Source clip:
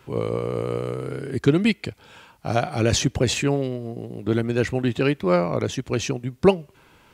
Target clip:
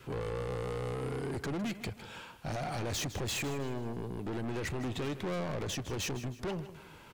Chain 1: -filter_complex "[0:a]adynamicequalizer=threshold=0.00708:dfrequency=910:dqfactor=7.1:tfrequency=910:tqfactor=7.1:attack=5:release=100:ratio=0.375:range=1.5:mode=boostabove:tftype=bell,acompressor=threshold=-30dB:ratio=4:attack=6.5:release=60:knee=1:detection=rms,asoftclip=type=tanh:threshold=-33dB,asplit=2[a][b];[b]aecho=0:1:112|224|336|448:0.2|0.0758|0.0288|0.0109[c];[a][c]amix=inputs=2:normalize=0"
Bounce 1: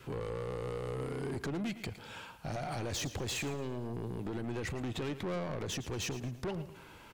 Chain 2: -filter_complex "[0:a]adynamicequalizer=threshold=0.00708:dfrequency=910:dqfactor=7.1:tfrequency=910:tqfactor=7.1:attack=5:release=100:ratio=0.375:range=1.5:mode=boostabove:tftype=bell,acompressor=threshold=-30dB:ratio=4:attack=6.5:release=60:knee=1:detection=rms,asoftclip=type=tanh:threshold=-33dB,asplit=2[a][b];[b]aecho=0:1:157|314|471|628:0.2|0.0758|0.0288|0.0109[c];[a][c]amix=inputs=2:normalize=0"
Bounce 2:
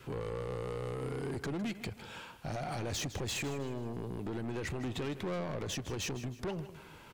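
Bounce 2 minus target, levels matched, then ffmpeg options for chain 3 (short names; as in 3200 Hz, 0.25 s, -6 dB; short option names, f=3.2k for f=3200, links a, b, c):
compressor: peak gain reduction +5 dB
-filter_complex "[0:a]adynamicequalizer=threshold=0.00708:dfrequency=910:dqfactor=7.1:tfrequency=910:tqfactor=7.1:attack=5:release=100:ratio=0.375:range=1.5:mode=boostabove:tftype=bell,acompressor=threshold=-23.5dB:ratio=4:attack=6.5:release=60:knee=1:detection=rms,asoftclip=type=tanh:threshold=-33dB,asplit=2[a][b];[b]aecho=0:1:157|314|471|628:0.2|0.0758|0.0288|0.0109[c];[a][c]amix=inputs=2:normalize=0"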